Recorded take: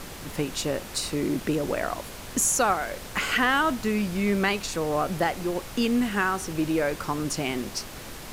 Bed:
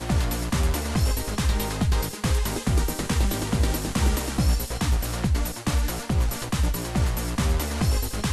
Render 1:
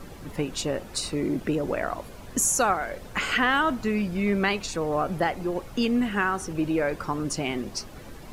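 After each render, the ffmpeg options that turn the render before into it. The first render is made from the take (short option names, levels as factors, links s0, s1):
-af "afftdn=nr=11:nf=-40"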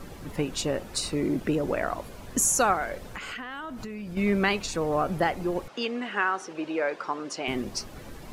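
-filter_complex "[0:a]asettb=1/sr,asplit=3[s0][s1][s2];[s0]atrim=end=2.974[s3];[s1]atrim=start=2.97:end=4.17,asetpts=PTS-STARTPTS,afade=t=in:d=0.004:c=qsin,afade=t=out:st=1.196:d=0.004:c=qsin,acompressor=threshold=0.0224:ratio=16:attack=3.2:release=140:knee=1:detection=peak[s4];[s2]atrim=start=4.166[s5];[s3][s4]acrossfade=d=0.004:c1=hsin:c2=qsin[s6];[s6][s5]acrossfade=d=0.004:c1=qsin:c2=hsin,asettb=1/sr,asplit=3[s7][s8][s9];[s7]atrim=end=5.684[s10];[s8]atrim=start=5.68:end=7.48,asetpts=PTS-STARTPTS,afade=t=in:d=0.004:c=qsin,afade=t=out:st=1.796:d=0.004:c=qsin,highpass=430,lowpass=5200[s11];[s9]atrim=start=7.476[s12];[s10][s11]acrossfade=d=0.004:c1=hsin:c2=qsin[s13];[s13][s12]acrossfade=d=0.004:c1=qsin:c2=hsin"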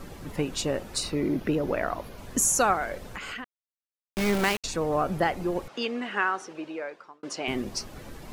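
-filter_complex "[0:a]asettb=1/sr,asplit=3[s0][s1][s2];[s0]atrim=end=1.034[s3];[s1]atrim=start=1.03:end=2.18,asetpts=PTS-STARTPTS,afade=t=in:d=0.004:c=qsin,afade=t=out:st=1.146:d=0.004:c=qsin,equalizer=f=7900:w=2.8:g=-10.5[s4];[s2]atrim=start=2.176[s5];[s3][s4]acrossfade=d=0.004:c1=hsin:c2=qsin[s6];[s6][s5]acrossfade=d=0.004:c1=qsin:c2=hsin,asettb=1/sr,asplit=3[s7][s8][s9];[s7]atrim=end=3.444[s10];[s8]atrim=start=3.44:end=4.64,asetpts=PTS-STARTPTS,afade=t=in:d=0.004:c=qsin,afade=t=out:st=1.196:d=0.004:c=qsin,aeval=exprs='val(0)*gte(abs(val(0)),0.0531)':c=same[s11];[s9]atrim=start=4.636[s12];[s10][s11]acrossfade=d=0.004:c1=hsin:c2=qsin[s13];[s13][s12]acrossfade=d=0.004:c1=qsin:c2=hsin,asplit=2[s14][s15];[s14]atrim=end=7.23,asetpts=PTS-STARTPTS,afade=t=out:st=6.25:d=0.98[s16];[s15]atrim=start=7.23,asetpts=PTS-STARTPTS,afade=t=in:d=0.004:c=hsin[s17];[s16][s17]concat=n=2:v=0:a=1"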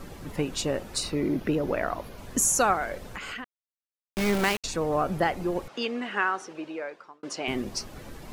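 -af anull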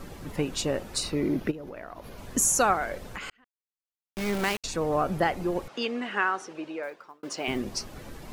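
-filter_complex "[0:a]asplit=3[s0][s1][s2];[s0]afade=t=out:st=1.5:d=0.02[s3];[s1]acompressor=threshold=0.0141:ratio=6:attack=3.2:release=140:knee=1:detection=peak,afade=t=in:st=1.5:d=0.02,afade=t=out:st=2.16:d=0.02[s4];[s2]afade=t=in:st=2.16:d=0.02[s5];[s3][s4][s5]amix=inputs=3:normalize=0,asettb=1/sr,asplit=3[s6][s7][s8];[s6]atrim=end=6.834[s9];[s7]atrim=start=6.83:end=7.58,asetpts=PTS-STARTPTS,afade=t=in:d=0.004:c=qsin,afade=t=out:st=0.746:d=0.004:c=qsin,acrusher=bits=7:mode=log:mix=0:aa=0.000001[s10];[s8]atrim=start=7.576[s11];[s9][s10]acrossfade=d=0.004:c1=hsin:c2=qsin[s12];[s12][s11]acrossfade=d=0.004:c1=qsin:c2=hsin,asplit=2[s13][s14];[s13]atrim=end=3.3,asetpts=PTS-STARTPTS,afade=t=out:st=3.296:d=0.004:c=hsin[s15];[s14]atrim=start=3.3,asetpts=PTS-STARTPTS,afade=t=in:d=1.57[s16];[s15][s16]concat=n=2:v=0:a=1"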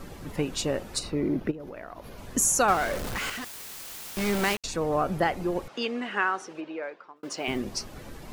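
-filter_complex "[0:a]asettb=1/sr,asplit=3[s0][s1][s2];[s0]atrim=end=0.994[s3];[s1]atrim=start=0.99:end=1.6,asetpts=PTS-STARTPTS,afade=t=in:d=0.004:c=qsin,afade=t=out:st=0.606:d=0.004:c=qsin,highshelf=f=2300:g=-8.5[s4];[s2]atrim=start=1.596[s5];[s3][s4]acrossfade=d=0.004:c1=hsin:c2=qsin[s6];[s6][s5]acrossfade=d=0.004:c1=qsin:c2=hsin,asettb=1/sr,asplit=3[s7][s8][s9];[s7]atrim=end=2.684[s10];[s8]atrim=start=2.68:end=4.55,asetpts=PTS-STARTPTS,afade=t=in:d=0.004:c=qsin,afade=t=out:st=1.866:d=0.004:c=qsin,aeval=exprs='val(0)+0.5*0.0335*sgn(val(0))':c=same[s11];[s9]atrim=start=4.546[s12];[s10][s11]acrossfade=d=0.004:c1=hsin:c2=qsin[s13];[s13][s12]acrossfade=d=0.004:c1=qsin:c2=hsin,asplit=3[s14][s15][s16];[s14]afade=t=out:st=6.6:d=0.02[s17];[s15]highpass=160,lowpass=3900,afade=t=in:st=6.6:d=0.02,afade=t=out:st=7.15:d=0.02[s18];[s16]afade=t=in:st=7.15:d=0.02[s19];[s17][s18][s19]amix=inputs=3:normalize=0"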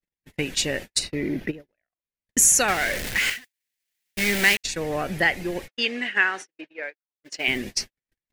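-af "agate=range=0.00112:threshold=0.02:ratio=16:detection=peak,highshelf=f=1500:t=q:w=3:g=7"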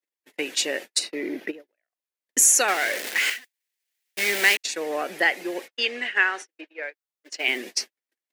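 -af "highpass=f=310:w=0.5412,highpass=f=310:w=1.3066"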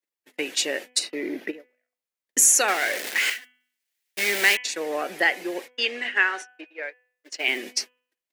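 -af "bandreject=f=249.3:t=h:w=4,bandreject=f=498.6:t=h:w=4,bandreject=f=747.9:t=h:w=4,bandreject=f=997.2:t=h:w=4,bandreject=f=1246.5:t=h:w=4,bandreject=f=1495.8:t=h:w=4,bandreject=f=1745.1:t=h:w=4,bandreject=f=1994.4:t=h:w=4,bandreject=f=2243.7:t=h:w=4,bandreject=f=2493:t=h:w=4,bandreject=f=2742.3:t=h:w=4,bandreject=f=2991.6:t=h:w=4,bandreject=f=3240.9:t=h:w=4"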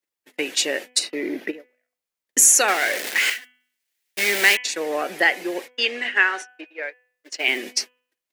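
-af "volume=1.41"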